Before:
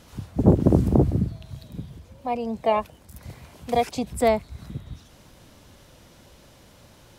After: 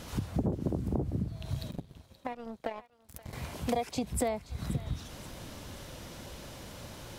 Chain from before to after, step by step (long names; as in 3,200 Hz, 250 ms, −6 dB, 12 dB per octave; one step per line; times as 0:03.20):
downward compressor 12 to 1, threshold −34 dBFS, peak gain reduction 24 dB
0:01.71–0:03.33: power curve on the samples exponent 2
feedback echo with a high-pass in the loop 527 ms, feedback 46%, high-pass 890 Hz, level −16 dB
level +6 dB